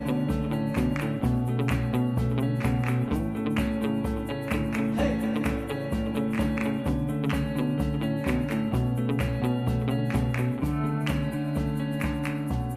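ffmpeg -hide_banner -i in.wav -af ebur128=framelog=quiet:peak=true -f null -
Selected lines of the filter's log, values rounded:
Integrated loudness:
  I:         -27.5 LUFS
  Threshold: -37.5 LUFS
Loudness range:
  LRA:         1.1 LU
  Threshold: -47.4 LUFS
  LRA low:   -27.9 LUFS
  LRA high:  -26.8 LUFS
True peak:
  Peak:      -13.2 dBFS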